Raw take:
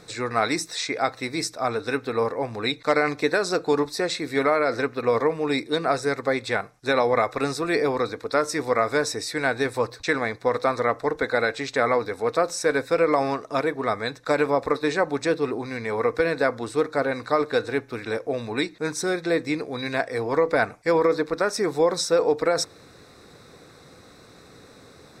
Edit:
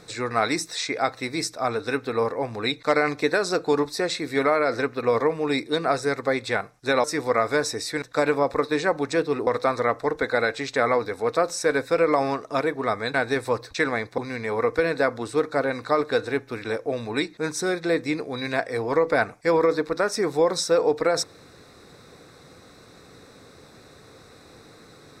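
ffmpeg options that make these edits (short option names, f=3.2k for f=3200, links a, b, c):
-filter_complex "[0:a]asplit=6[a][b][c][d][e][f];[a]atrim=end=7.042[g];[b]atrim=start=8.448:end=9.432[h];[c]atrim=start=14.138:end=15.592[i];[d]atrim=start=10.468:end=14.142[j];[e]atrim=start=9.428:end=10.472[k];[f]atrim=start=15.588[l];[g][h]acrossfade=d=0.004:c1=hsin:c2=hsin[m];[m][i]acrossfade=d=0.004:c1=hsin:c2=hsin[n];[n][j]acrossfade=d=0.004:c1=hsin:c2=hsin[o];[o][k]acrossfade=d=0.004:c1=hsin:c2=hsin[p];[p][l]acrossfade=d=0.004:c1=hsin:c2=hsin"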